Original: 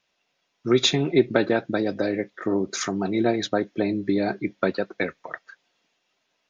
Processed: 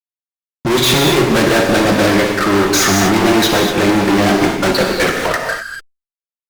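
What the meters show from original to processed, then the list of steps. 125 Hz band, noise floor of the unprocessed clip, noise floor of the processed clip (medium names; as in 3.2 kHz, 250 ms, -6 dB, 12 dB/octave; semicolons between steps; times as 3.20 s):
+12.5 dB, -74 dBFS, under -85 dBFS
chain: fuzz box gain 41 dB, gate -50 dBFS; gated-style reverb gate 270 ms flat, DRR 0.5 dB; reverse; upward compressor, threshold -24 dBFS; reverse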